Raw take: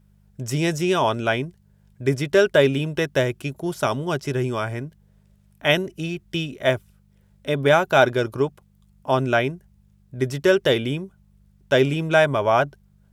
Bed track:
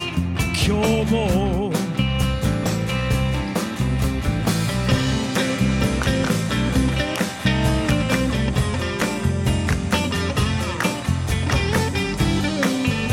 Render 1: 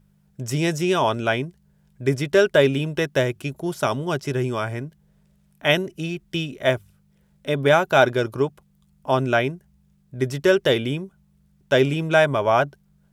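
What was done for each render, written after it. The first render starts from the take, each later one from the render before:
hum removal 50 Hz, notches 2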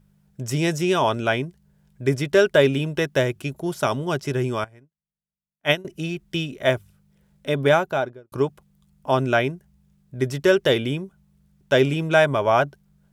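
0:04.64–0:05.85: expander for the loud parts 2.5 to 1, over −39 dBFS
0:07.61–0:08.32: fade out and dull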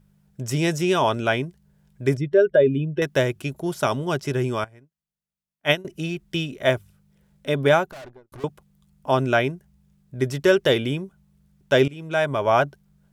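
0:02.17–0:03.02: expanding power law on the bin magnitudes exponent 1.7
0:07.91–0:08.44: tube saturation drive 38 dB, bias 0.75
0:11.88–0:12.53: fade in, from −20 dB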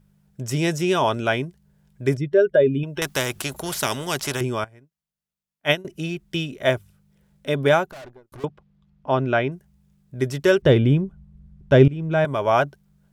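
0:02.83–0:04.41: every bin compressed towards the loudest bin 2 to 1
0:08.45–0:09.52: high-frequency loss of the air 210 metres
0:10.62–0:12.25: RIAA equalisation playback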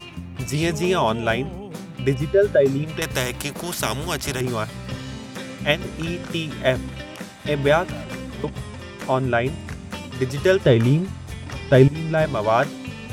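mix in bed track −12.5 dB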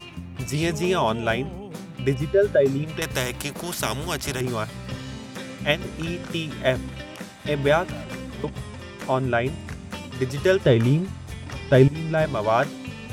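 level −2 dB

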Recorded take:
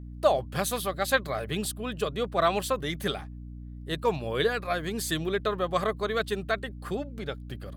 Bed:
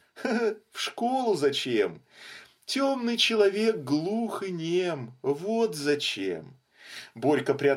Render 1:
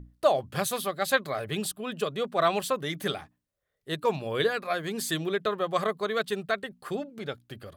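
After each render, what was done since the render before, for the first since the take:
mains-hum notches 60/120/180/240/300 Hz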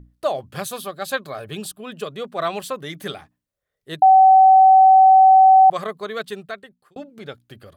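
0:00.67–0:01.77: notch filter 2,000 Hz, Q 7.2
0:04.02–0:05.70: beep over 762 Hz −7 dBFS
0:06.28–0:06.96: fade out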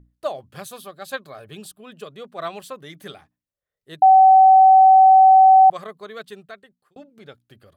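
expander for the loud parts 1.5 to 1, over −25 dBFS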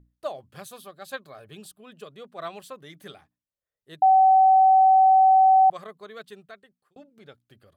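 level −5.5 dB

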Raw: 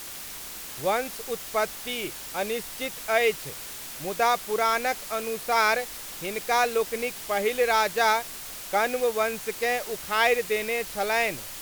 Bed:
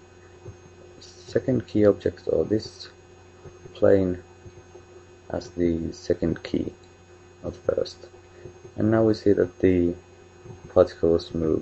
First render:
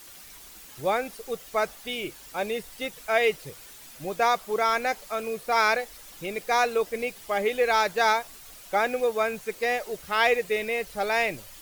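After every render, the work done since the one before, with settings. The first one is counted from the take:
broadband denoise 10 dB, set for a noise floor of −39 dBFS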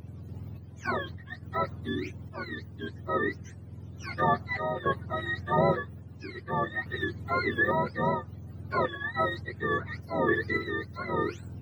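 frequency axis turned over on the octave scale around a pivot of 920 Hz
sample-and-hold tremolo 3.5 Hz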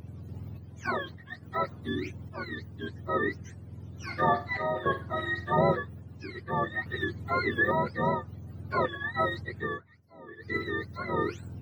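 0:00.89–0:01.85: low-shelf EQ 97 Hz −10.5 dB
0:04.02–0:05.50: flutter between parallel walls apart 8.5 metres, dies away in 0.3 s
0:09.60–0:10.60: duck −21.5 dB, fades 0.22 s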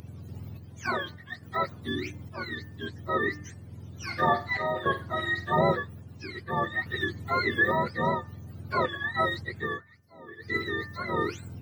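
high-shelf EQ 2,300 Hz +7.5 dB
hum removal 298.2 Hz, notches 8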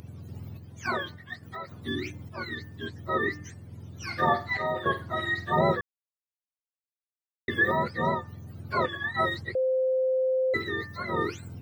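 0:01.44–0:01.86: downward compressor 3 to 1, threshold −37 dBFS
0:05.81–0:07.48: silence
0:09.55–0:10.54: beep over 519 Hz −22 dBFS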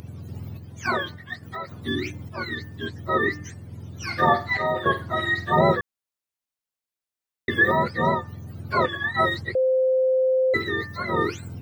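level +5 dB

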